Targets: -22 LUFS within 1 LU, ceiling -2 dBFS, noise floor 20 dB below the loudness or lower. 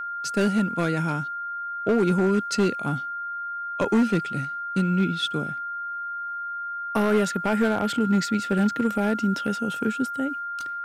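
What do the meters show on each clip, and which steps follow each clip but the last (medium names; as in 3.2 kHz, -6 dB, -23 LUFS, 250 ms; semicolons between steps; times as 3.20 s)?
clipped samples 1.4%; clipping level -15.0 dBFS; steady tone 1.4 kHz; tone level -29 dBFS; loudness -25.0 LUFS; peak level -15.0 dBFS; loudness target -22.0 LUFS
-> clip repair -15 dBFS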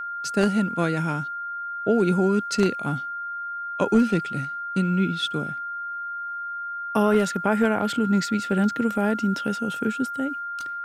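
clipped samples 0.0%; steady tone 1.4 kHz; tone level -29 dBFS
-> band-stop 1.4 kHz, Q 30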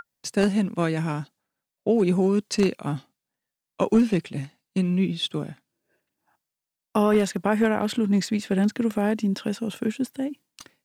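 steady tone not found; loudness -24.5 LUFS; peak level -6.5 dBFS; loudness target -22.0 LUFS
-> trim +2.5 dB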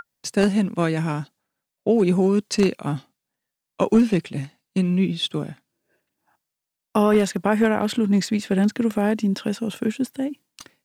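loudness -22.0 LUFS; peak level -4.0 dBFS; noise floor -85 dBFS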